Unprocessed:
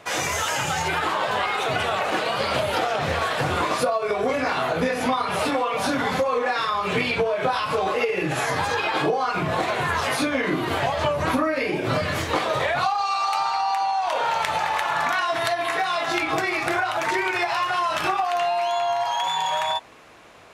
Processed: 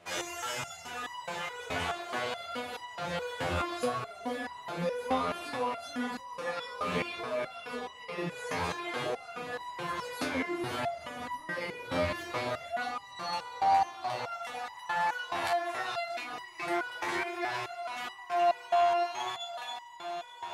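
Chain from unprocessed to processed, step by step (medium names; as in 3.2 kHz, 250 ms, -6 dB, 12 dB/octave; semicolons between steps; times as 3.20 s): echo that smears into a reverb 530 ms, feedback 73%, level -9 dB; resonator arpeggio 4.7 Hz 87–980 Hz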